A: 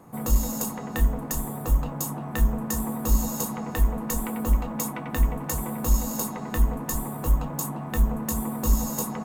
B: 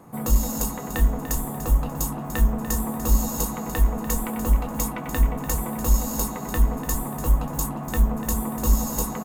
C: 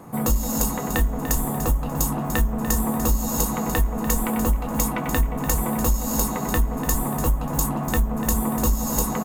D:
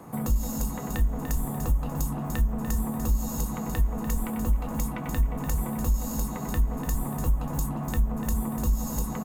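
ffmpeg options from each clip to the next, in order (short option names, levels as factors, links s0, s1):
-af "aecho=1:1:293|586|879:0.251|0.0779|0.0241,volume=1.26"
-af "acompressor=threshold=0.0794:ratio=10,volume=1.88"
-filter_complex "[0:a]acrossover=split=200[s0][s1];[s1]acompressor=threshold=0.0251:ratio=4[s2];[s0][s2]amix=inputs=2:normalize=0,volume=0.75"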